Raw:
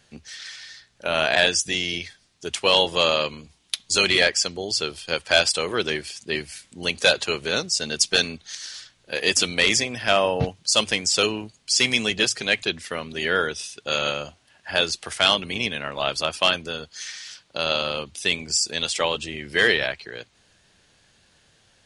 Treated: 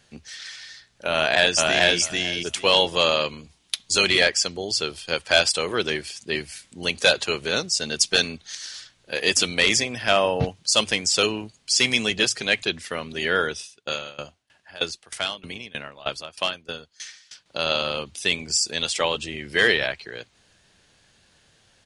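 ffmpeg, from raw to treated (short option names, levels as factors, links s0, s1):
-filter_complex "[0:a]asplit=2[s0][s1];[s1]afade=t=in:st=1.13:d=0.01,afade=t=out:st=1.99:d=0.01,aecho=0:1:440|880|1320:0.944061|0.141609|0.0212414[s2];[s0][s2]amix=inputs=2:normalize=0,asettb=1/sr,asplit=3[s3][s4][s5];[s3]atrim=end=13.564[s6];[s4]atrim=start=13.56:end=17.46,asetpts=PTS-STARTPTS,afade=t=in:d=0.004:c=qsin,afade=t=out:st=3.896:d=0.004:c=qsin,aeval=exprs='val(0)*pow(10,-21*if(lt(mod(3.2*n/s,1),2*abs(3.2)/1000),1-mod(3.2*n/s,1)/(2*abs(3.2)/1000),(mod(3.2*n/s,1)-2*abs(3.2)/1000)/(1-2*abs(3.2)/1000))/20)':c=same[s7];[s5]atrim=start=17.456[s8];[s6][s7]acrossfade=d=0.004:c1=hsin:c2=qsin[s9];[s9][s8]acrossfade=d=0.004:c1=qsin:c2=hsin"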